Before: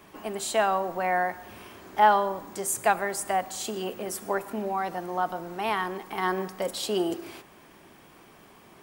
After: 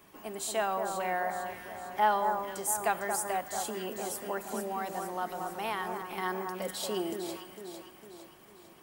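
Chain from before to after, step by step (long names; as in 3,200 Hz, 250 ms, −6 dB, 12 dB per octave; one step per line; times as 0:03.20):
high-shelf EQ 7,900 Hz +8 dB
delay that swaps between a low-pass and a high-pass 227 ms, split 1,700 Hz, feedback 70%, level −5.5 dB
0:03.58–0:06.02: multiband upward and downward compressor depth 40%
level −7 dB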